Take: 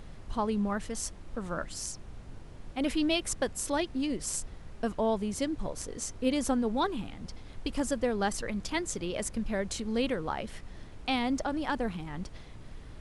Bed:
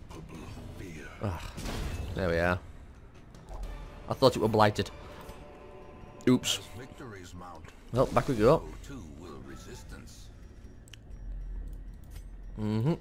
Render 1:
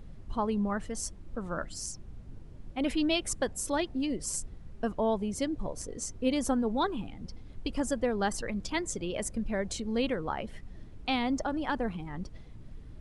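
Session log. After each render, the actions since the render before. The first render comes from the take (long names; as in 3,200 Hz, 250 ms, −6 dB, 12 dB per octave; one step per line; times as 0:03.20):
broadband denoise 10 dB, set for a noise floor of −47 dBFS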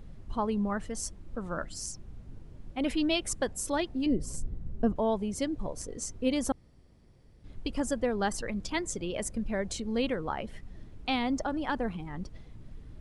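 0:04.06–0:04.96: tilt shelving filter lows +8.5 dB, about 710 Hz
0:06.52–0:07.44: fill with room tone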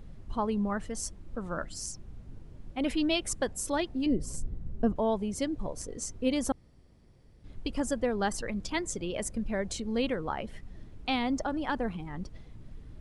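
no processing that can be heard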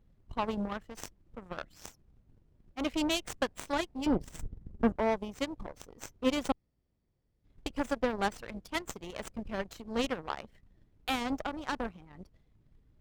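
harmonic generator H 7 −18 dB, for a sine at −15 dBFS
windowed peak hold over 3 samples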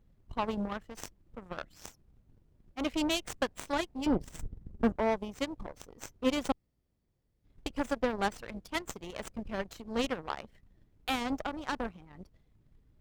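hard clipping −18 dBFS, distortion −30 dB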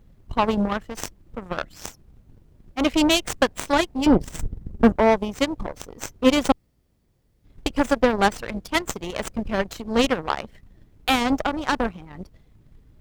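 level +12 dB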